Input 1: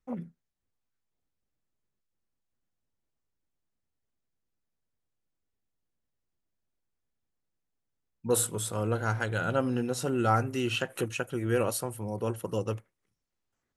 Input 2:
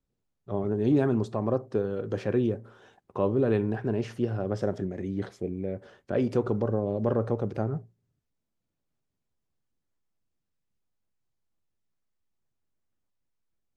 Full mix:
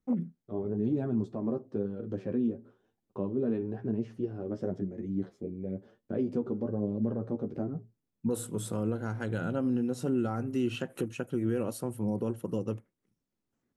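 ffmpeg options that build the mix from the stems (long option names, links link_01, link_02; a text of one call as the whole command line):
ffmpeg -i stem1.wav -i stem2.wav -filter_complex "[0:a]volume=-5dB[link_01];[1:a]flanger=delay=8.8:depth=4.1:regen=16:speed=1:shape=sinusoidal,agate=range=-33dB:threshold=-49dB:ratio=3:detection=peak,volume=-10dB[link_02];[link_01][link_02]amix=inputs=2:normalize=0,equalizer=frequency=230:width=0.62:gain=14.5,alimiter=limit=-21dB:level=0:latency=1:release=467" out.wav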